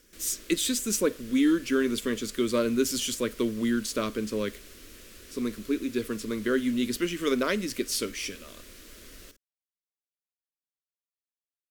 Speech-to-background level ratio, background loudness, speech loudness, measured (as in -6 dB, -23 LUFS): 19.5 dB, -48.0 LUFS, -28.5 LUFS